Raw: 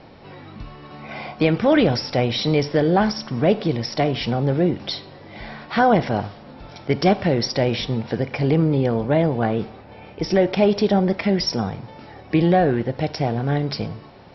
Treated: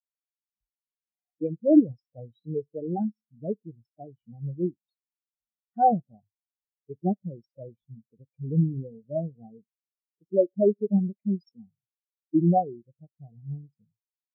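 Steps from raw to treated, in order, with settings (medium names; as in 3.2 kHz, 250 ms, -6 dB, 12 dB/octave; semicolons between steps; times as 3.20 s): spectral contrast expander 4:1; trim -2.5 dB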